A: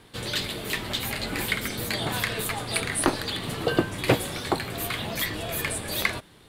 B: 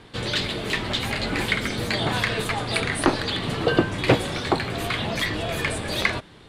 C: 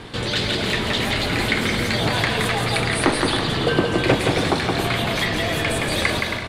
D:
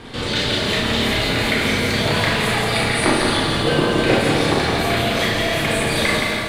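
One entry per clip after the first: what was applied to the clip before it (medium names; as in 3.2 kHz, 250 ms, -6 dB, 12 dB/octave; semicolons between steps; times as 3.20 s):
in parallel at -4 dB: saturation -22.5 dBFS, distortion -9 dB; on the sum: distance through air 72 m; trim +1.5 dB
in parallel at -2 dB: compressor with a negative ratio -35 dBFS, ratio -1; on the sum: bouncing-ball echo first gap 170 ms, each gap 0.6×, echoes 5
Schroeder reverb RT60 0.47 s, combs from 27 ms, DRR -2 dB; bit-crushed delay 157 ms, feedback 80%, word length 7-bit, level -12 dB; trim -2 dB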